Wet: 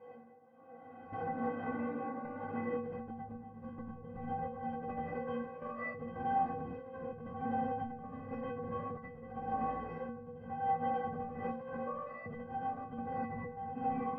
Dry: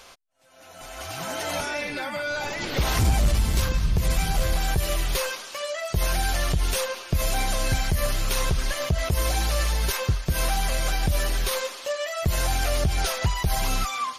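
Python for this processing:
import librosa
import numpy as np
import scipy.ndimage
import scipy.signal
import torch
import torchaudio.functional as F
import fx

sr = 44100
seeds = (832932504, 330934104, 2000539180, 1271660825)

p1 = fx.lower_of_two(x, sr, delay_ms=0.4)
p2 = scipy.signal.sosfilt(scipy.signal.butter(4, 110.0, 'highpass', fs=sr, output='sos'), p1)
p3 = fx.peak_eq(p2, sr, hz=240.0, db=-2.0, octaves=0.77)
p4 = p3 + fx.room_early_taps(p3, sr, ms=(11, 38), db=(-11.0, -9.5), dry=0)
p5 = fx.rev_fdn(p4, sr, rt60_s=1.7, lf_ratio=1.3, hf_ratio=0.5, size_ms=58.0, drr_db=-7.5)
p6 = fx.tremolo_shape(p5, sr, shape='saw_down', hz=0.89, depth_pct=70)
p7 = scipy.signal.sosfilt(scipy.signal.butter(4, 1100.0, 'lowpass', fs=sr, output='sos'), p6)
p8 = fx.over_compress(p7, sr, threshold_db=-31.0, ratio=-1.0)
p9 = fx.dynamic_eq(p8, sr, hz=680.0, q=1.7, threshold_db=-44.0, ratio=4.0, max_db=-4)
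p10 = fx.stiff_resonator(p9, sr, f0_hz=230.0, decay_s=0.74, stiffness=0.03)
y = F.gain(torch.from_numpy(p10), 14.5).numpy()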